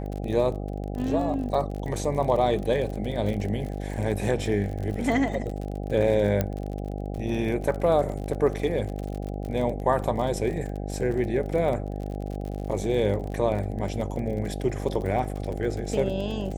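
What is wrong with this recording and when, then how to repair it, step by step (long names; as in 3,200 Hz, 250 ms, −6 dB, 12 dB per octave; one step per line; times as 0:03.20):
mains buzz 50 Hz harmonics 16 −32 dBFS
surface crackle 41 per second −32 dBFS
0:06.41: click −11 dBFS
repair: click removal
hum removal 50 Hz, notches 16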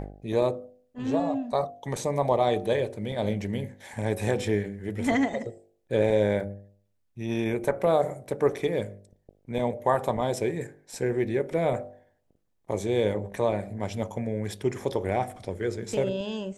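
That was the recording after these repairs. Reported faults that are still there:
0:06.41: click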